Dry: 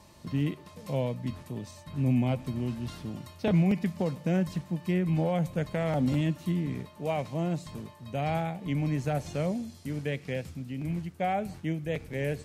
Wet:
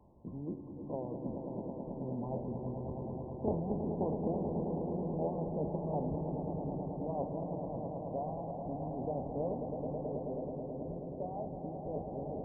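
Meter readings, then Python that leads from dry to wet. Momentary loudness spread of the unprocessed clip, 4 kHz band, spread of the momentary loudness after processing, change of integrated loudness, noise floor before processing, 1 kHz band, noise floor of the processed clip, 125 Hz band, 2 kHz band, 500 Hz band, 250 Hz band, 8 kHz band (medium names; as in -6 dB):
10 LU, under -40 dB, 7 LU, -7.5 dB, -52 dBFS, -5.5 dB, -45 dBFS, -10.5 dB, under -40 dB, -3.5 dB, -8.0 dB, under -30 dB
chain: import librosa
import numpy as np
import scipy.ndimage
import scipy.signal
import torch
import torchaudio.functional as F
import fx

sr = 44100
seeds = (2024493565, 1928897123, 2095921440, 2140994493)

p1 = fx.spec_trails(x, sr, decay_s=0.45)
p2 = scipy.signal.sosfilt(scipy.signal.butter(16, 1000.0, 'lowpass', fs=sr, output='sos'), p1)
p3 = fx.hpss(p2, sr, part='harmonic', gain_db=-16)
p4 = p3 + fx.echo_swell(p3, sr, ms=108, loudest=5, wet_db=-8.5, dry=0)
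y = p4 * 10.0 ** (-1.0 / 20.0)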